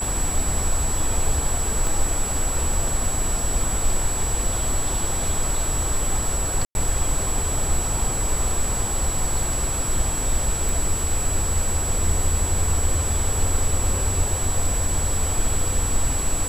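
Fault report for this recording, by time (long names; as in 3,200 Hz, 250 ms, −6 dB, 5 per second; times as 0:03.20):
whistle 7,800 Hz −26 dBFS
0:01.87: click
0:06.65–0:06.75: drop-out 101 ms
0:10.69: click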